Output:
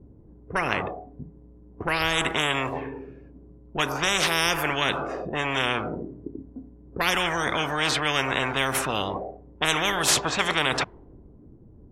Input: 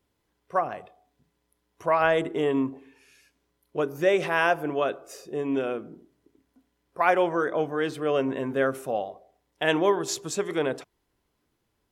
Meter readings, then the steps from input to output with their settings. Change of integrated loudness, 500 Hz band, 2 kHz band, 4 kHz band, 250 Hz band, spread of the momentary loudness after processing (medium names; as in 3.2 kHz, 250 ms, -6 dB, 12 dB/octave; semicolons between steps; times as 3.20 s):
+1.5 dB, -5.0 dB, +5.5 dB, +13.5 dB, -2.5 dB, 18 LU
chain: level-controlled noise filter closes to 300 Hz, open at -23 dBFS; treble shelf 2 kHz -10 dB; spectrum-flattening compressor 10:1; trim +3 dB